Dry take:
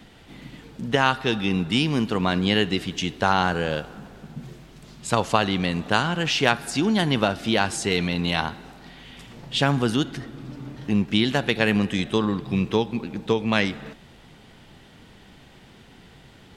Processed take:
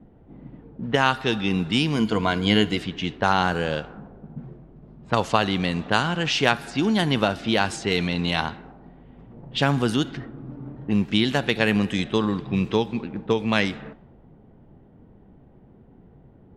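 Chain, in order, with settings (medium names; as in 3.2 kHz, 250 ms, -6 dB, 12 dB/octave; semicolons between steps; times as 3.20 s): level-controlled noise filter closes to 510 Hz, open at -18.5 dBFS; 1.95–2.77 s: rippled EQ curve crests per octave 1.8, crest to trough 9 dB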